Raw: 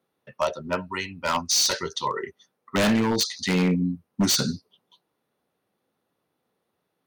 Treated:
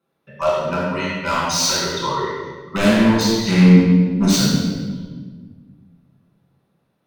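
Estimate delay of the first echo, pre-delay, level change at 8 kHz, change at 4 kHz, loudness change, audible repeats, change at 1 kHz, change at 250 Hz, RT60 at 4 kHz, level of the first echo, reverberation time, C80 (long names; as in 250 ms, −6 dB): no echo audible, 6 ms, +2.5 dB, +3.5 dB, +7.5 dB, no echo audible, +6.0 dB, +10.5 dB, 1.1 s, no echo audible, 1.5 s, 0.5 dB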